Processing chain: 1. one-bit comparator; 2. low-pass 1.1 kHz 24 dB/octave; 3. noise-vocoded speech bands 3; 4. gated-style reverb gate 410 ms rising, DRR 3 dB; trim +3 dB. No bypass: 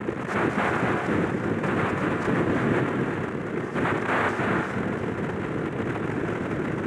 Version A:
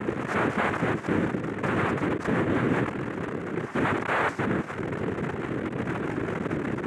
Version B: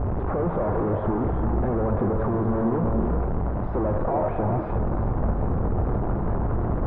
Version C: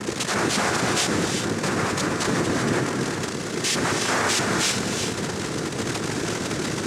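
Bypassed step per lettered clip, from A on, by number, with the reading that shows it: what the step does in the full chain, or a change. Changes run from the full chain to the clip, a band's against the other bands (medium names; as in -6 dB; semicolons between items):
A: 4, loudness change -2.0 LU; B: 3, 2 kHz band -16.0 dB; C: 2, loudness change +2.5 LU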